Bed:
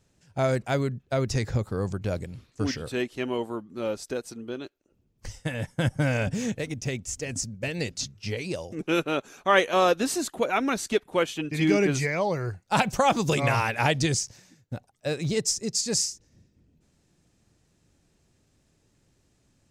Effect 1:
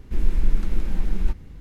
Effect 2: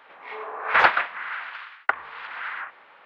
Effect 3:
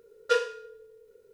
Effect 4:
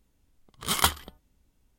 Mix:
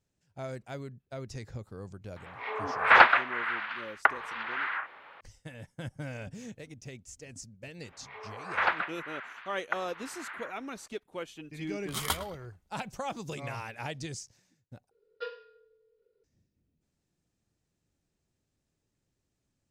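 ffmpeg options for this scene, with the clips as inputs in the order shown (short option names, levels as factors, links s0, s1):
-filter_complex "[2:a]asplit=2[s0][s1];[0:a]volume=0.188[s2];[4:a]asplit=2[s3][s4];[s4]adelay=106,lowpass=f=2000:p=1,volume=0.266,asplit=2[s5][s6];[s6]adelay=106,lowpass=f=2000:p=1,volume=0.36,asplit=2[s7][s8];[s8]adelay=106,lowpass=f=2000:p=1,volume=0.36,asplit=2[s9][s10];[s10]adelay=106,lowpass=f=2000:p=1,volume=0.36[s11];[s3][s5][s7][s9][s11]amix=inputs=5:normalize=0[s12];[3:a]aresample=11025,aresample=44100[s13];[s2]asplit=2[s14][s15];[s14]atrim=end=14.914[s16];[s13]atrim=end=1.33,asetpts=PTS-STARTPTS,volume=0.188[s17];[s15]atrim=start=16.236[s18];[s0]atrim=end=3.05,asetpts=PTS-STARTPTS,afade=t=in:d=0.004:c=hsin,afade=t=out:st=3.046:d=0.004:c=hsin,adelay=2160[s19];[s1]atrim=end=3.05,asetpts=PTS-STARTPTS,volume=0.316,afade=t=in:d=0.004:c=hsin,afade=t=out:st=3.046:d=0.004:c=hsin,adelay=7830[s20];[s12]atrim=end=1.78,asetpts=PTS-STARTPTS,volume=0.376,afade=t=in:d=0.004:c=hsin,afade=t=out:st=1.776:d=0.004:c=hsin,adelay=11260[s21];[s16][s17]acrossfade=d=0.004:c1=hsin:c2=hsin[s22];[s22][s18]acrossfade=d=0.004:c1=hsin:c2=hsin[s23];[s23][s19][s20][s21]amix=inputs=4:normalize=0"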